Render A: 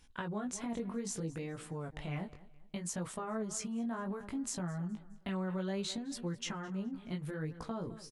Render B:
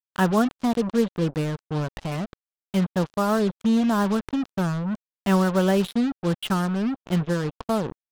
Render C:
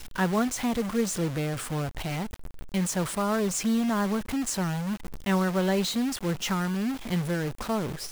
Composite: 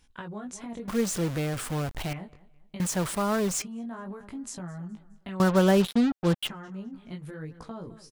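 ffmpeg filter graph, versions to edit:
-filter_complex "[2:a]asplit=2[a][b];[0:a]asplit=4[c][d][e][f];[c]atrim=end=0.882[g];[a]atrim=start=0.878:end=2.132[h];[d]atrim=start=2.128:end=2.802[i];[b]atrim=start=2.798:end=3.622[j];[e]atrim=start=3.618:end=5.402[k];[1:a]atrim=start=5.398:end=6.492[l];[f]atrim=start=6.488[m];[g][h]acrossfade=d=0.004:c1=hsin:c2=hsin[n];[n][i]acrossfade=d=0.004:c1=hsin:c2=hsin[o];[o][j]acrossfade=d=0.004:c1=hsin:c2=hsin[p];[p][k]acrossfade=d=0.004:c1=hsin:c2=hsin[q];[q][l]acrossfade=d=0.004:c1=hsin:c2=hsin[r];[r][m]acrossfade=d=0.004:c1=hsin:c2=hsin"

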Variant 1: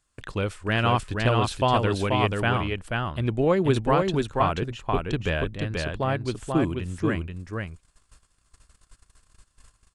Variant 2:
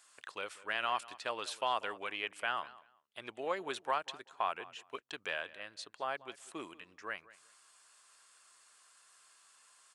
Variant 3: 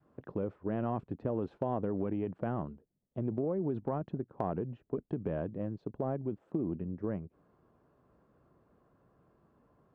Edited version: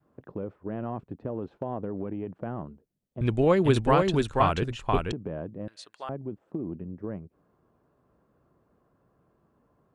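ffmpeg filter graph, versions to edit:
-filter_complex "[2:a]asplit=3[a][b][c];[a]atrim=end=3.212[d];[0:a]atrim=start=3.208:end=5.122[e];[b]atrim=start=5.118:end=5.682[f];[1:a]atrim=start=5.678:end=6.092[g];[c]atrim=start=6.088[h];[d][e]acrossfade=d=0.004:c1=hsin:c2=hsin[i];[i][f]acrossfade=d=0.004:c1=hsin:c2=hsin[j];[j][g]acrossfade=d=0.004:c1=hsin:c2=hsin[k];[k][h]acrossfade=d=0.004:c1=hsin:c2=hsin"

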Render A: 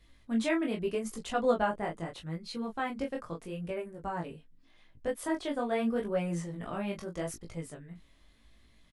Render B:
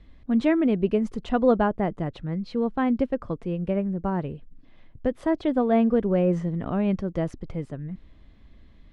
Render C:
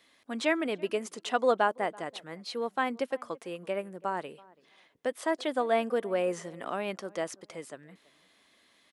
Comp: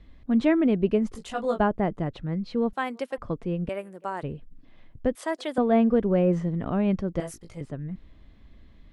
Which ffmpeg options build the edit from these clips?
-filter_complex "[0:a]asplit=2[a][b];[2:a]asplit=3[c][d][e];[1:a]asplit=6[f][g][h][i][j][k];[f]atrim=end=1.152[l];[a]atrim=start=1.148:end=1.602[m];[g]atrim=start=1.598:end=2.732[n];[c]atrim=start=2.728:end=3.182[o];[h]atrim=start=3.178:end=3.692[p];[d]atrim=start=3.688:end=4.232[q];[i]atrim=start=4.228:end=5.152[r];[e]atrim=start=5.148:end=5.582[s];[j]atrim=start=5.578:end=7.202[t];[b]atrim=start=7.198:end=7.612[u];[k]atrim=start=7.608[v];[l][m]acrossfade=d=0.004:c1=hsin:c2=hsin[w];[w][n]acrossfade=d=0.004:c1=hsin:c2=hsin[x];[x][o]acrossfade=d=0.004:c1=hsin:c2=hsin[y];[y][p]acrossfade=d=0.004:c1=hsin:c2=hsin[z];[z][q]acrossfade=d=0.004:c1=hsin:c2=hsin[aa];[aa][r]acrossfade=d=0.004:c1=hsin:c2=hsin[ab];[ab][s]acrossfade=d=0.004:c1=hsin:c2=hsin[ac];[ac][t]acrossfade=d=0.004:c1=hsin:c2=hsin[ad];[ad][u]acrossfade=d=0.004:c1=hsin:c2=hsin[ae];[ae][v]acrossfade=d=0.004:c1=hsin:c2=hsin"

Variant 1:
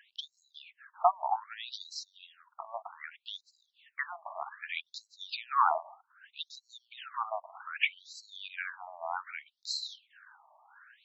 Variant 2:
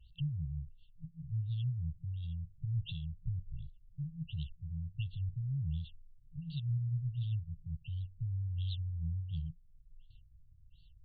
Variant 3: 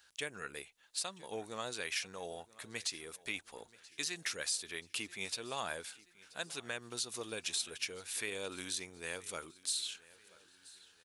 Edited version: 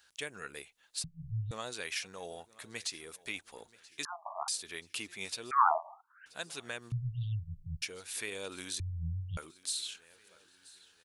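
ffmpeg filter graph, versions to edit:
-filter_complex "[1:a]asplit=3[a][b][c];[0:a]asplit=2[d][e];[2:a]asplit=6[f][g][h][i][j][k];[f]atrim=end=1.042[l];[a]atrim=start=1.038:end=1.512[m];[g]atrim=start=1.508:end=4.052[n];[d]atrim=start=4.048:end=4.482[o];[h]atrim=start=4.478:end=5.512[p];[e]atrim=start=5.508:end=6.262[q];[i]atrim=start=6.258:end=6.922[r];[b]atrim=start=6.918:end=7.822[s];[j]atrim=start=7.818:end=8.802[t];[c]atrim=start=8.798:end=9.372[u];[k]atrim=start=9.368[v];[l][m]acrossfade=d=0.004:c1=hsin:c2=hsin[w];[w][n]acrossfade=d=0.004:c1=hsin:c2=hsin[x];[x][o]acrossfade=d=0.004:c1=hsin:c2=hsin[y];[y][p]acrossfade=d=0.004:c1=hsin:c2=hsin[z];[z][q]acrossfade=d=0.004:c1=hsin:c2=hsin[aa];[aa][r]acrossfade=d=0.004:c1=hsin:c2=hsin[ab];[ab][s]acrossfade=d=0.004:c1=hsin:c2=hsin[ac];[ac][t]acrossfade=d=0.004:c1=hsin:c2=hsin[ad];[ad][u]acrossfade=d=0.004:c1=hsin:c2=hsin[ae];[ae][v]acrossfade=d=0.004:c1=hsin:c2=hsin"

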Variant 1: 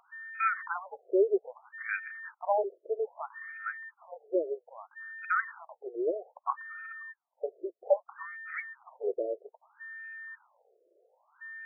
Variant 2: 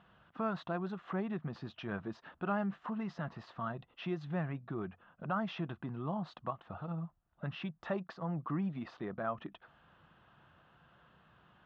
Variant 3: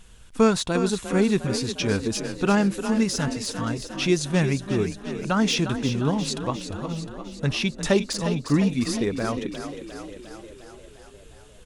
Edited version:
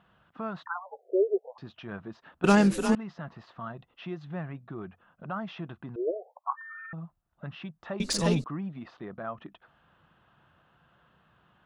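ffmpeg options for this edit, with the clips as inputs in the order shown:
-filter_complex "[0:a]asplit=2[a][b];[2:a]asplit=2[c][d];[1:a]asplit=5[e][f][g][h][i];[e]atrim=end=0.662[j];[a]atrim=start=0.658:end=1.582[k];[f]atrim=start=1.578:end=2.442[l];[c]atrim=start=2.438:end=2.952[m];[g]atrim=start=2.948:end=5.962[n];[b]atrim=start=5.958:end=6.932[o];[h]atrim=start=6.928:end=8.002[p];[d]atrim=start=7.998:end=8.442[q];[i]atrim=start=8.438[r];[j][k]acrossfade=d=0.004:c1=hsin:c2=hsin[s];[s][l]acrossfade=d=0.004:c1=hsin:c2=hsin[t];[t][m]acrossfade=d=0.004:c1=hsin:c2=hsin[u];[u][n]acrossfade=d=0.004:c1=hsin:c2=hsin[v];[v][o]acrossfade=d=0.004:c1=hsin:c2=hsin[w];[w][p]acrossfade=d=0.004:c1=hsin:c2=hsin[x];[x][q]acrossfade=d=0.004:c1=hsin:c2=hsin[y];[y][r]acrossfade=d=0.004:c1=hsin:c2=hsin"

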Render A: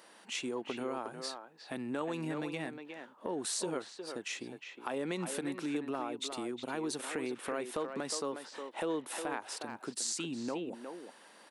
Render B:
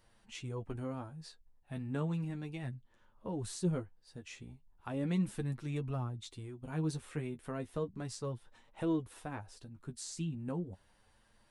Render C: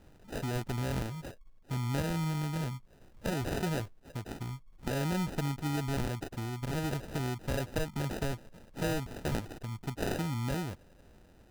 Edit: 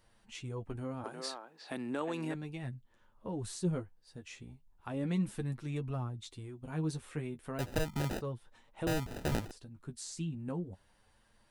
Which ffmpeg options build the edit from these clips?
-filter_complex "[2:a]asplit=2[a][b];[1:a]asplit=4[c][d][e][f];[c]atrim=end=1.042[g];[0:a]atrim=start=1.038:end=2.342[h];[d]atrim=start=2.338:end=7.592[i];[a]atrim=start=7.588:end=8.212[j];[e]atrim=start=8.208:end=8.872[k];[b]atrim=start=8.868:end=9.512[l];[f]atrim=start=9.508[m];[g][h]acrossfade=d=0.004:c1=hsin:c2=hsin[n];[n][i]acrossfade=d=0.004:c1=hsin:c2=hsin[o];[o][j]acrossfade=d=0.004:c1=hsin:c2=hsin[p];[p][k]acrossfade=d=0.004:c1=hsin:c2=hsin[q];[q][l]acrossfade=d=0.004:c1=hsin:c2=hsin[r];[r][m]acrossfade=d=0.004:c1=hsin:c2=hsin"

